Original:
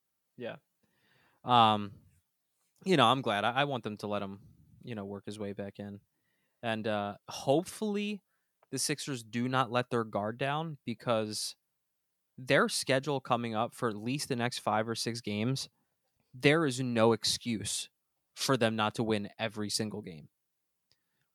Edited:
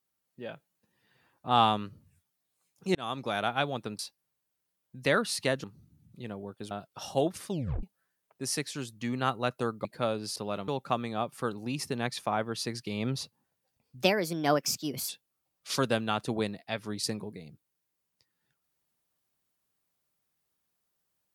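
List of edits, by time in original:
2.95–3.37 s: fade in
3.99–4.31 s: swap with 11.43–13.08 s
5.38–7.03 s: delete
7.81 s: tape stop 0.34 s
10.17–10.92 s: delete
16.43–17.80 s: speed 129%

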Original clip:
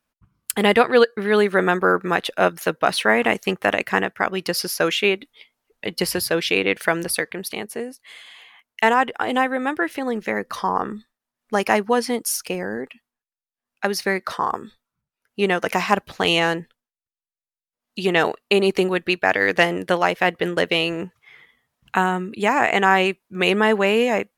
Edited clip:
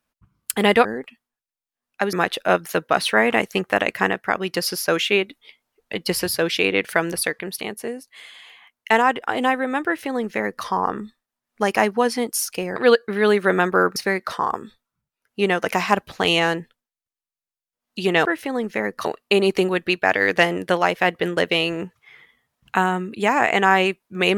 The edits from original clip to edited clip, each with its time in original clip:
0.85–2.05 s: swap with 12.68–13.96 s
9.77–10.57 s: copy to 18.25 s

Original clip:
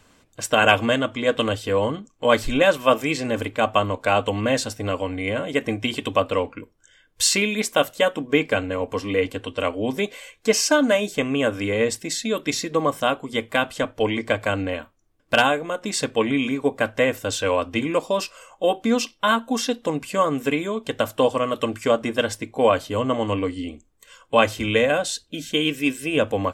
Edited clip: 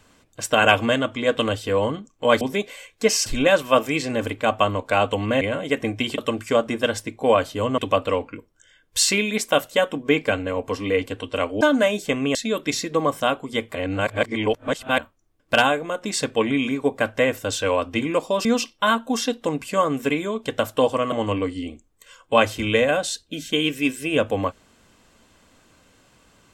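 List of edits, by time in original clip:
4.56–5.25 s: delete
9.85–10.70 s: move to 2.41 s
11.44–12.15 s: delete
13.55–14.78 s: reverse
18.25–18.86 s: delete
21.53–23.13 s: move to 6.02 s

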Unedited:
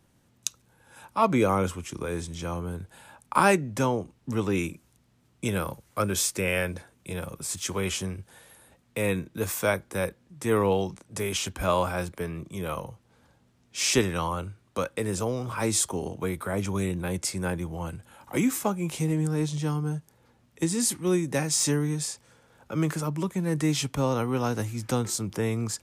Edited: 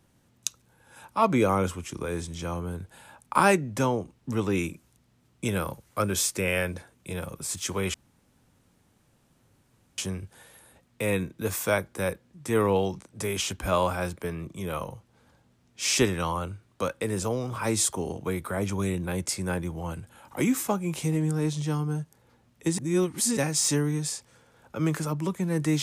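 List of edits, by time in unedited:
7.94 s: insert room tone 2.04 s
20.74–21.33 s: reverse

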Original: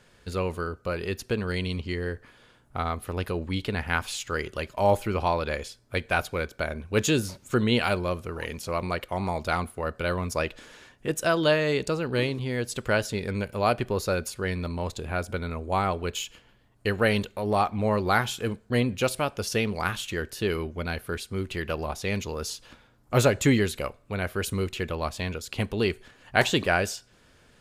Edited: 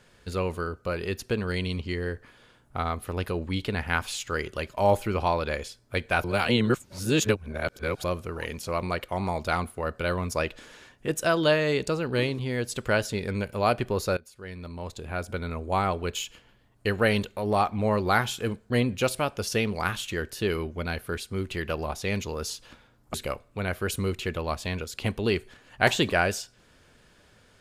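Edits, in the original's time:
6.24–8.04 s: reverse
14.17–15.56 s: fade in, from -22 dB
23.14–23.68 s: delete

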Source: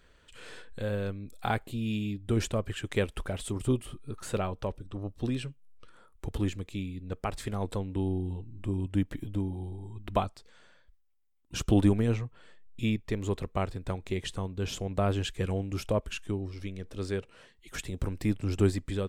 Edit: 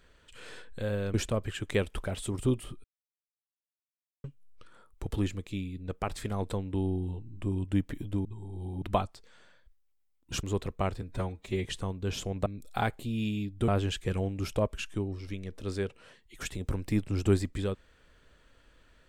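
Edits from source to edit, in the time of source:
1.14–2.36 s: move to 15.01 s
4.06–5.46 s: mute
9.47–10.04 s: reverse
11.65–13.19 s: delete
13.78–14.20 s: stretch 1.5×

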